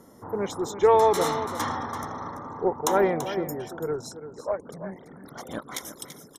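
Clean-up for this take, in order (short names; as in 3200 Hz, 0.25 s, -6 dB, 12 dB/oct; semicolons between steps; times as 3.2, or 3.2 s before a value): inverse comb 0.336 s -11.5 dB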